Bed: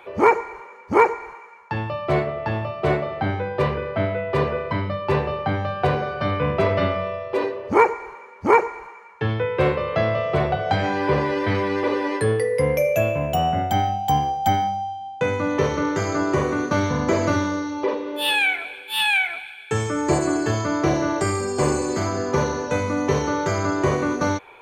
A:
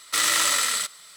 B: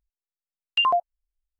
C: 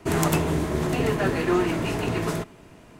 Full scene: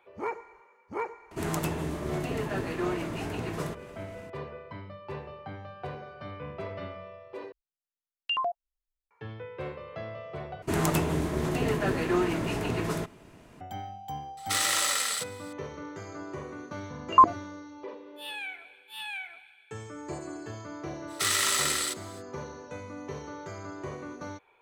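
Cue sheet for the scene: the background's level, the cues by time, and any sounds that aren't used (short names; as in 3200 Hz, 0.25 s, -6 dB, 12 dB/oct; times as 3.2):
bed -18 dB
1.31 add C -8.5 dB + upward compressor, threshold -30 dBFS
7.52 replace with B -8.5 dB
10.62 replace with C -4 dB
14.37 add A -5.5 dB + bell 510 Hz +4.5 dB 0.76 oct
16.33 add B -3.5 dB + stepped low-pass 8.8 Hz 320–2000 Hz
21.07 add A -5 dB, fades 0.05 s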